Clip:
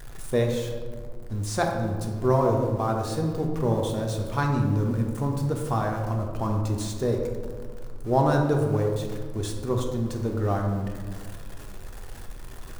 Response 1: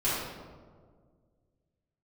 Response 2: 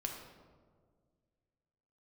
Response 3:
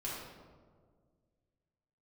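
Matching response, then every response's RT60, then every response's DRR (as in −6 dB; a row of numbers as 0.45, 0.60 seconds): 2; 1.8, 1.8, 1.8 seconds; −11.5, 1.0, −7.0 decibels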